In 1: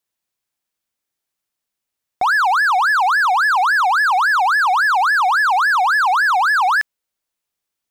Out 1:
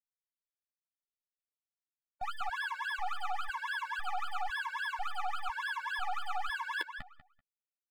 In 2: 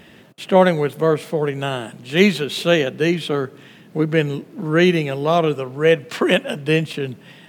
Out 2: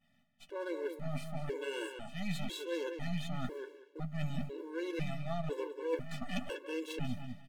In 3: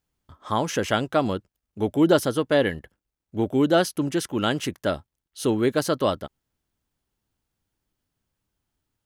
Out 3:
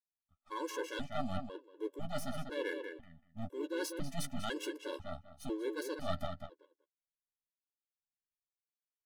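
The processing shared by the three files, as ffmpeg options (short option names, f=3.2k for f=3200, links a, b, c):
-filter_complex "[0:a]aeval=exprs='if(lt(val(0),0),0.251*val(0),val(0))':c=same,agate=range=-33dB:threshold=-34dB:ratio=3:detection=peak,areverse,acompressor=threshold=-31dB:ratio=16,areverse,asplit=2[a][b];[b]adelay=12,volume=-9dB[c];[a][c]amix=inputs=2:normalize=0,asplit=2[d][e];[e]adelay=193,lowpass=f=3.7k:p=1,volume=-6.5dB,asplit=2[f][g];[g]adelay=193,lowpass=f=3.7k:p=1,volume=0.21,asplit=2[h][i];[i]adelay=193,lowpass=f=3.7k:p=1,volume=0.21[j];[f][h][j]amix=inputs=3:normalize=0[k];[d][k]amix=inputs=2:normalize=0,afftfilt=real='re*gt(sin(2*PI*1*pts/sr)*(1-2*mod(floor(b*sr/1024/290),2)),0)':imag='im*gt(sin(2*PI*1*pts/sr)*(1-2*mod(floor(b*sr/1024/290),2)),0)':win_size=1024:overlap=0.75"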